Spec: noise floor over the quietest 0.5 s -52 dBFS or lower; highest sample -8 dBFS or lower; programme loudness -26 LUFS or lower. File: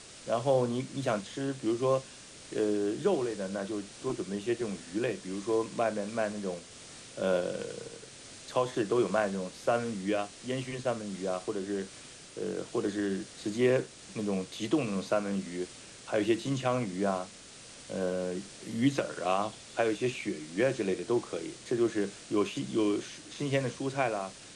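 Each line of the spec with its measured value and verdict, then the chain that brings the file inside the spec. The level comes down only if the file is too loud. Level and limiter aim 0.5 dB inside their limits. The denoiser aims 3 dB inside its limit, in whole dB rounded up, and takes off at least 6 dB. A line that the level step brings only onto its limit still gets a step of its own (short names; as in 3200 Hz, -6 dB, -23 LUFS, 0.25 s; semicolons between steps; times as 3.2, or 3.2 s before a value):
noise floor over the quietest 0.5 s -50 dBFS: fail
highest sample -14.5 dBFS: OK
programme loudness -32.0 LUFS: OK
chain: denoiser 6 dB, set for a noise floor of -50 dBFS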